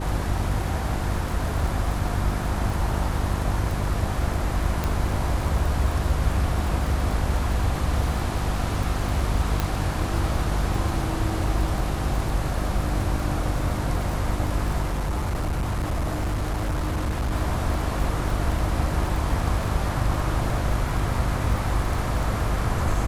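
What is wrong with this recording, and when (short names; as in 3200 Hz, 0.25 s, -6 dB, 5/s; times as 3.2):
crackle 33/s -28 dBFS
hum 50 Hz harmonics 7 -28 dBFS
4.84 pop
9.6 pop
14.82–17.33 clipped -21.5 dBFS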